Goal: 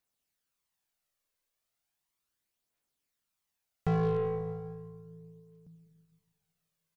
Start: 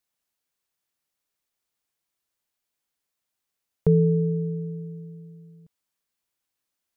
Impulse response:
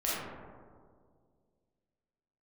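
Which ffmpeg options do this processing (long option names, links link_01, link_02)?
-filter_complex "[0:a]asoftclip=type=tanh:threshold=-24dB,asplit=2[link_01][link_02];[link_02]adelay=380,highpass=300,lowpass=3400,asoftclip=type=hard:threshold=-32.5dB,volume=-16dB[link_03];[link_01][link_03]amix=inputs=2:normalize=0,asplit=2[link_04][link_05];[1:a]atrim=start_sample=2205,adelay=88[link_06];[link_05][link_06]afir=irnorm=-1:irlink=0,volume=-15dB[link_07];[link_04][link_07]amix=inputs=2:normalize=0,aphaser=in_gain=1:out_gain=1:delay=2:decay=0.4:speed=0.36:type=triangular,aeval=exprs='0.075*(cos(1*acos(clip(val(0)/0.075,-1,1)))-cos(1*PI/2))+0.00335*(cos(7*acos(clip(val(0)/0.075,-1,1)))-cos(7*PI/2))':channel_layout=same"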